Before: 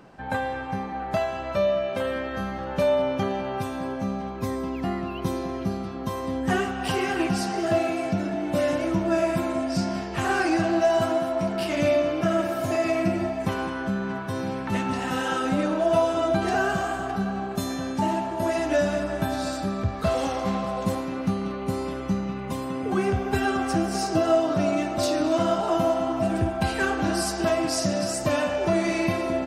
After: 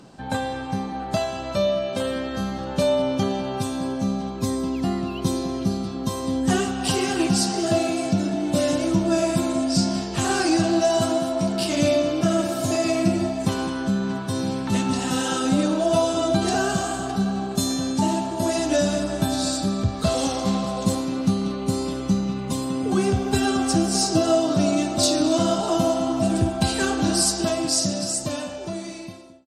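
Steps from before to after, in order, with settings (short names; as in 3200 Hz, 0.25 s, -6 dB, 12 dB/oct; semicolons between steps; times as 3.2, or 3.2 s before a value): ending faded out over 2.53 s; ten-band EQ 125 Hz +4 dB, 250 Hz +5 dB, 2000 Hz -5 dB, 4000 Hz +8 dB, 8000 Hz +12 dB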